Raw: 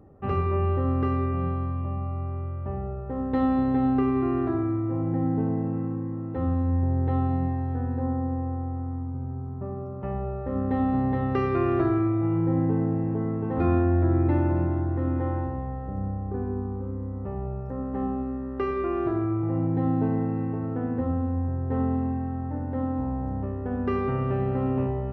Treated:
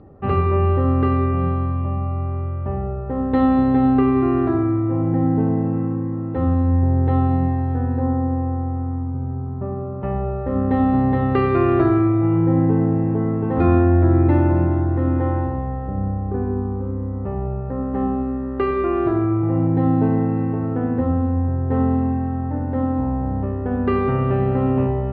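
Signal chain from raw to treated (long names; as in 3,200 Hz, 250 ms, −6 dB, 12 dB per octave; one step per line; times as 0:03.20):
Butterworth low-pass 4,800 Hz 96 dB per octave
level +7 dB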